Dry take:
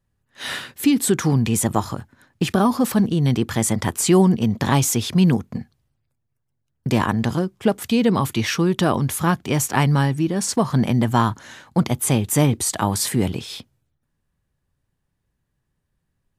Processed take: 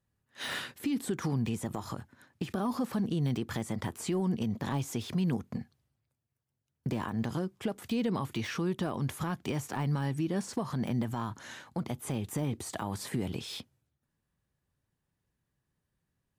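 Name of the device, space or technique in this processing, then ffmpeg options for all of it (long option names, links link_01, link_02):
podcast mastering chain: -af "highpass=frequency=79:poles=1,deesser=0.75,acompressor=threshold=-19dB:ratio=4,alimiter=limit=-17.5dB:level=0:latency=1:release=153,volume=-4.5dB" -ar 48000 -c:a libmp3lame -b:a 112k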